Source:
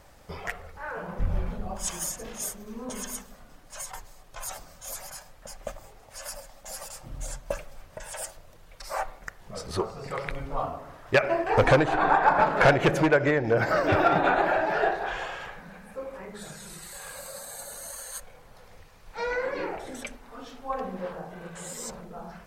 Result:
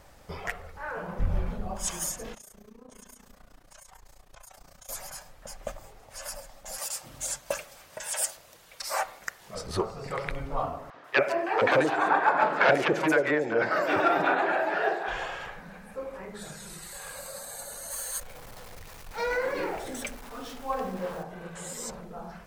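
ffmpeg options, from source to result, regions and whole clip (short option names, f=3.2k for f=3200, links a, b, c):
-filter_complex "[0:a]asettb=1/sr,asplit=3[a][b][c];[a]atrim=end=2.344[d];[b]atrim=start=2.34:end=4.89,asetpts=PTS-STARTPTS,afade=t=in:d=0.004:c=qsin,afade=t=out:st=2.546:d=0.004:c=qsin,acompressor=threshold=-43dB:ratio=10:attack=3.2:release=140:knee=1:detection=peak,tremolo=f=29:d=0.857[e];[c]atrim=start=4.886[f];[d][e]acrossfade=d=0.004:c1=hsin:c2=qsin[g];[g][f]acrossfade=d=0.004:c1=qsin:c2=hsin,asettb=1/sr,asplit=3[h][i][j];[h]atrim=end=6.784[k];[i]atrim=start=6.78:end=9.55,asetpts=PTS-STARTPTS,afade=t=in:d=0.004:c=qsin,afade=t=out:st=2.766:d=0.004:c=qsin,highpass=f=270:p=1,highshelf=f=2.1k:g=9[l];[j]atrim=start=9.546[m];[k][l]acrossfade=d=0.004:c1=hsin:c2=qsin[n];[n][m]acrossfade=d=0.004:c1=qsin:c2=hsin,asettb=1/sr,asplit=3[o][p][q];[o]atrim=end=10.904[r];[p]atrim=start=10.9:end=15.08,asetpts=PTS-STARTPTS,afade=t=in:d=0.004:c=qsin,afade=t=out:st=4.176:d=0.004:c=qsin,highpass=270,acrossover=split=660|5300[s][t][u];[s]adelay=40[v];[u]adelay=140[w];[v][t][w]amix=inputs=3:normalize=0,atrim=end_sample=184338[x];[q]atrim=start=15.076[y];[r][x]acrossfade=d=0.004:c1=hsin:c2=qsin[z];[z][y]acrossfade=d=0.004:c1=qsin:c2=hsin,asettb=1/sr,asplit=3[aa][ab][ac];[aa]atrim=end=17.914[ad];[ab]atrim=start=17.91:end=21.23,asetpts=PTS-STARTPTS,afade=t=in:d=0.004:c=qsin,afade=t=out:st=3.316:d=0.004:c=qsin,aeval=exprs='val(0)+0.5*0.00631*sgn(val(0))':c=same,highshelf=f=7k:g=5[ae];[ac]atrim=start=21.226[af];[ad][ae]acrossfade=d=0.004:c1=hsin:c2=qsin[ag];[ag][af]acrossfade=d=0.004:c1=qsin:c2=hsin"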